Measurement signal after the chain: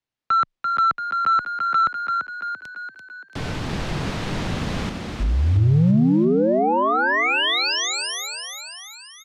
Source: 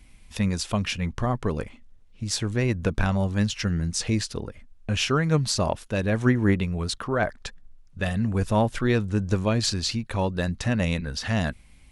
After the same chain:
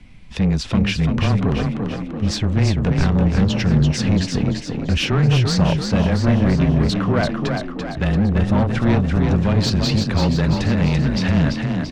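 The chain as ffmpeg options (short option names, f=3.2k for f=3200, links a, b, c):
-filter_complex "[0:a]lowpass=4.4k,equalizer=f=160:t=o:w=1.8:g=8,asplit=2[a][b];[b]alimiter=limit=-14.5dB:level=0:latency=1:release=155,volume=-1.5dB[c];[a][c]amix=inputs=2:normalize=0,afreqshift=-16,asoftclip=type=tanh:threshold=-14dB,asplit=8[d][e][f][g][h][i][j][k];[e]adelay=339,afreqshift=34,volume=-5dB[l];[f]adelay=678,afreqshift=68,volume=-10.2dB[m];[g]adelay=1017,afreqshift=102,volume=-15.4dB[n];[h]adelay=1356,afreqshift=136,volume=-20.6dB[o];[i]adelay=1695,afreqshift=170,volume=-25.8dB[p];[j]adelay=2034,afreqshift=204,volume=-31dB[q];[k]adelay=2373,afreqshift=238,volume=-36.2dB[r];[d][l][m][n][o][p][q][r]amix=inputs=8:normalize=0,volume=1.5dB"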